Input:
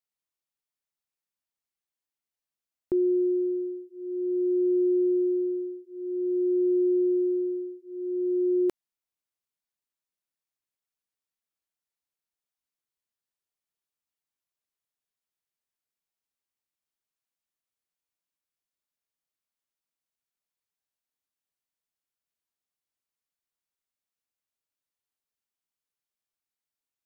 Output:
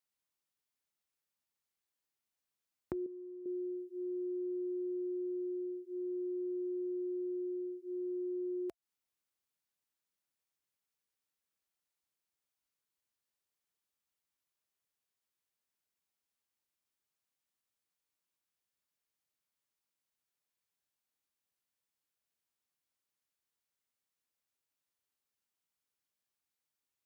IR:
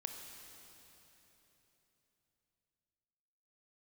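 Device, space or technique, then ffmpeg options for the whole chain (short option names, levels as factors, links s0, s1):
serial compression, leveller first: -filter_complex "[0:a]acompressor=threshold=0.0398:ratio=2.5,acompressor=threshold=0.0112:ratio=5,highpass=f=43:w=0.5412,highpass=f=43:w=1.3066,bandreject=f=680:w=17,asettb=1/sr,asplit=3[s0][s1][s2];[s0]atrim=end=3.064[s3];[s1]atrim=start=3.06:end=3.46,asetpts=PTS-STARTPTS,afade=t=in:d=0.004:c=qsin,afade=t=out:st=0.396:d=0.004:c=qsin,equalizer=f=200:t=o:w=2.6:g=-13[s4];[s2]atrim=start=3.456[s5];[s3][s4]acrossfade=d=0.004:c1=hsin:c2=qsin[s6];[s6][s5]acrossfade=d=0.004:c1=qsin:c2=hsin,volume=1.12"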